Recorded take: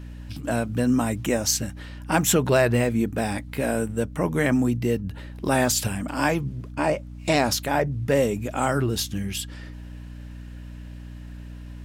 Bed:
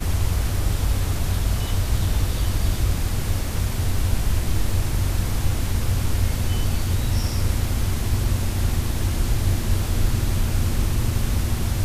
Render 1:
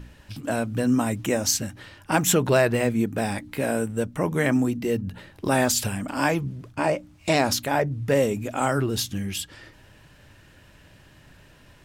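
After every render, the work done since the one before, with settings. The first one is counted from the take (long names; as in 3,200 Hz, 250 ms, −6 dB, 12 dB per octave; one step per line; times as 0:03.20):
hum removal 60 Hz, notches 5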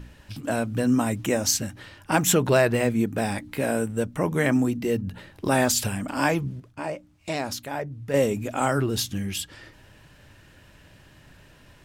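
0:06.60–0:08.14: clip gain −8 dB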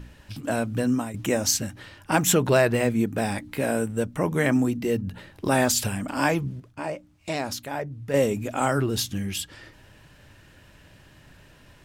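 0:00.70–0:01.14: fade out equal-power, to −13.5 dB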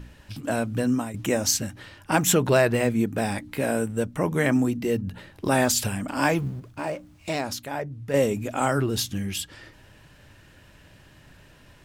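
0:06.22–0:07.41: mu-law and A-law mismatch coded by mu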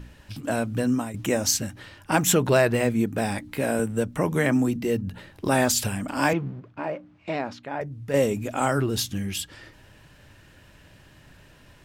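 0:03.79–0:04.76: multiband upward and downward compressor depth 40%
0:06.33–0:07.81: band-pass filter 140–2,500 Hz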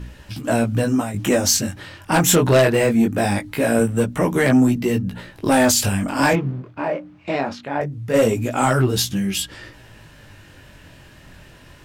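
chorus effect 0.22 Hz, delay 15.5 ms, depth 7.9 ms
sine wavefolder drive 6 dB, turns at −9 dBFS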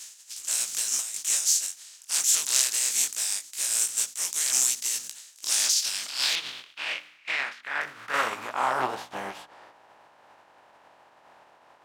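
compressing power law on the bin magnitudes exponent 0.38
band-pass filter sweep 7,000 Hz → 820 Hz, 0:05.38–0:08.92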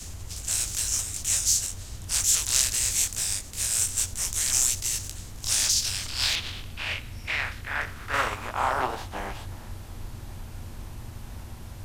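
mix in bed −18 dB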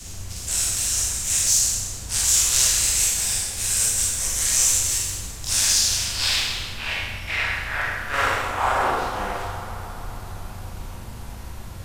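delay with a band-pass on its return 136 ms, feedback 82%, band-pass 870 Hz, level −12 dB
four-comb reverb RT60 1.1 s, combs from 33 ms, DRR −3.5 dB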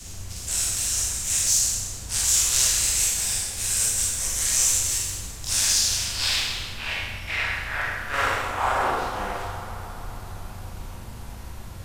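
level −2 dB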